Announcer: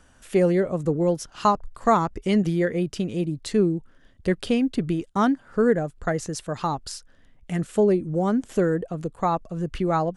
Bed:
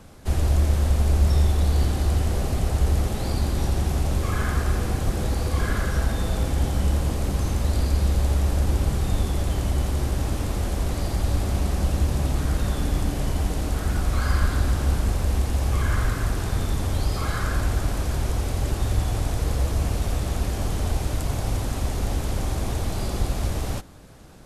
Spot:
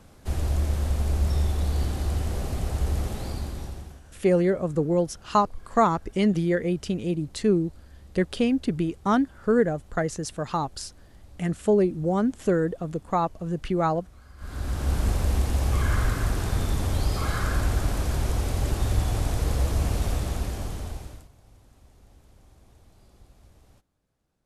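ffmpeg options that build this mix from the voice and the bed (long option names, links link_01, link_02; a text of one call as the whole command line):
ffmpeg -i stem1.wav -i stem2.wav -filter_complex "[0:a]adelay=3900,volume=-1dB[link_01];[1:a]volume=21.5dB,afade=type=out:start_time=3.11:duration=0.9:silence=0.0749894,afade=type=in:start_time=14.37:duration=0.69:silence=0.0473151,afade=type=out:start_time=20.06:duration=1.23:silence=0.0375837[link_02];[link_01][link_02]amix=inputs=2:normalize=0" out.wav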